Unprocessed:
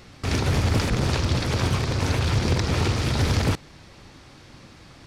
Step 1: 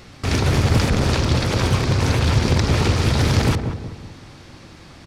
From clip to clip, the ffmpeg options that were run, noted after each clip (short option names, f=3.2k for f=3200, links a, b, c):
-filter_complex "[0:a]asplit=2[a][b];[b]adelay=185,lowpass=f=930:p=1,volume=-6dB,asplit=2[c][d];[d]adelay=185,lowpass=f=930:p=1,volume=0.46,asplit=2[e][f];[f]adelay=185,lowpass=f=930:p=1,volume=0.46,asplit=2[g][h];[h]adelay=185,lowpass=f=930:p=1,volume=0.46,asplit=2[i][j];[j]adelay=185,lowpass=f=930:p=1,volume=0.46,asplit=2[k][l];[l]adelay=185,lowpass=f=930:p=1,volume=0.46[m];[a][c][e][g][i][k][m]amix=inputs=7:normalize=0,volume=4dB"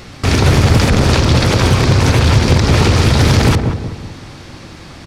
-af "alimiter=level_in=9.5dB:limit=-1dB:release=50:level=0:latency=1,volume=-1dB"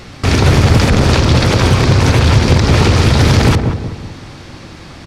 -af "highshelf=f=8.7k:g=-4.5,volume=1dB"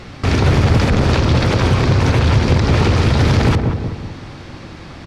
-filter_complex "[0:a]lowpass=f=3.7k:p=1,asplit=2[a][b];[b]alimiter=limit=-12dB:level=0:latency=1:release=130,volume=-2dB[c];[a][c]amix=inputs=2:normalize=0,volume=-5.5dB"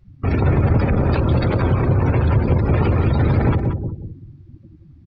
-filter_complex "[0:a]afftdn=nr=34:nf=-21,asplit=2[a][b];[b]adelay=180,highpass=300,lowpass=3.4k,asoftclip=type=hard:threshold=-13.5dB,volume=-10dB[c];[a][c]amix=inputs=2:normalize=0,volume=-3dB"